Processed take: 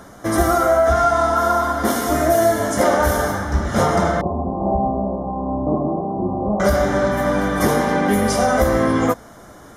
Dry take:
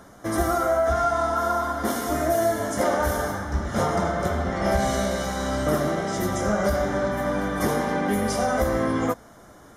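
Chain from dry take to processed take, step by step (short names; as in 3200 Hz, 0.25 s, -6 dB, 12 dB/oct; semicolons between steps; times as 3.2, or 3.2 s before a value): 4.21–6.6 rippled Chebyshev low-pass 1100 Hz, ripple 6 dB; gain +6.5 dB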